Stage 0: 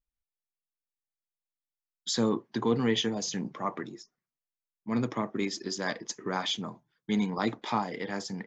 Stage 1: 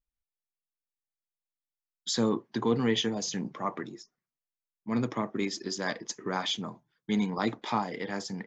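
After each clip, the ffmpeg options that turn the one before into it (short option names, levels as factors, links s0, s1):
-af anull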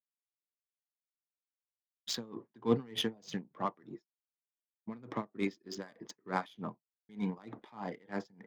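-af "agate=range=0.0224:threshold=0.00794:ratio=3:detection=peak,adynamicsmooth=sensitivity=3.5:basefreq=2200,aeval=exprs='val(0)*pow(10,-27*(0.5-0.5*cos(2*PI*3.3*n/s))/20)':c=same"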